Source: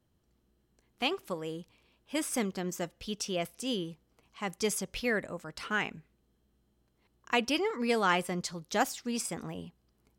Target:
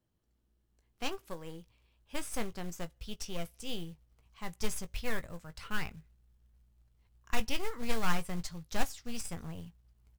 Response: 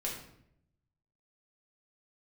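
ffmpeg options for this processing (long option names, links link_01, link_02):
-filter_complex "[0:a]aeval=exprs='0.224*(cos(1*acos(clip(val(0)/0.224,-1,1)))-cos(1*PI/2))+0.0562*(cos(4*acos(clip(val(0)/0.224,-1,1)))-cos(4*PI/2))+0.00141*(cos(5*acos(clip(val(0)/0.224,-1,1)))-cos(5*PI/2))':channel_layout=same,asubboost=boost=8.5:cutoff=97,acrusher=bits=5:mode=log:mix=0:aa=0.000001,asplit=2[link_01][link_02];[link_02]adelay=18,volume=-11dB[link_03];[link_01][link_03]amix=inputs=2:normalize=0,volume=-7.5dB"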